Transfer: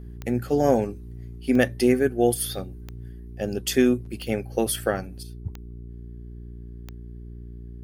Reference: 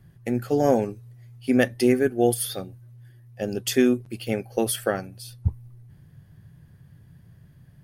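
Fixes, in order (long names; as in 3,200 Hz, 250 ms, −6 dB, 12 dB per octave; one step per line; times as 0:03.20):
click removal
hum removal 58.9 Hz, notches 7
level 0 dB, from 0:05.23 +10 dB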